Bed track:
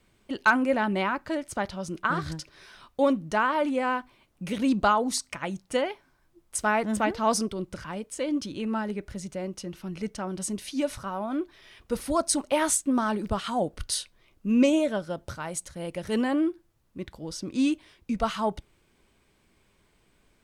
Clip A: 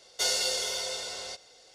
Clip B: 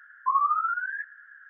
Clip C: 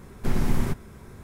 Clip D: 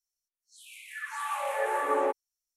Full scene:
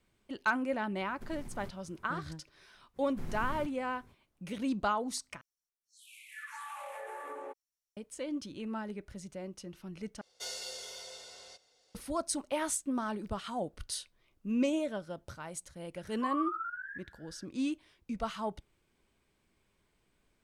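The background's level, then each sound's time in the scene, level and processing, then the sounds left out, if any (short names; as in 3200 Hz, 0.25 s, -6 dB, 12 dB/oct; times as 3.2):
bed track -9 dB
0.97 add C -17 dB + compressor, threshold -23 dBFS
2.93 add C -17 dB, fades 0.05 s
5.41 replace with D -6 dB + compressor, threshold -34 dBFS
10.21 replace with A -13.5 dB
15.96 add B -11 dB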